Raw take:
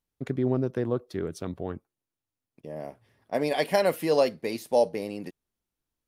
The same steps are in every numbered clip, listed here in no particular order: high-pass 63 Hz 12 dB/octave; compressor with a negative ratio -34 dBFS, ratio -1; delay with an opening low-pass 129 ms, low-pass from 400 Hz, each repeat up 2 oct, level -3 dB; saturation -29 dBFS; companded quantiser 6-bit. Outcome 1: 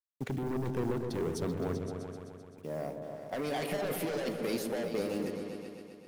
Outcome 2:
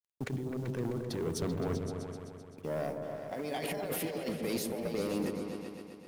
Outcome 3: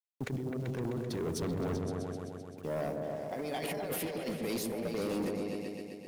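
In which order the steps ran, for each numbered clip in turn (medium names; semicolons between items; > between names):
companded quantiser > high-pass > saturation > compressor with a negative ratio > delay with an opening low-pass; compressor with a negative ratio > companded quantiser > high-pass > saturation > delay with an opening low-pass; high-pass > companded quantiser > compressor with a negative ratio > delay with an opening low-pass > saturation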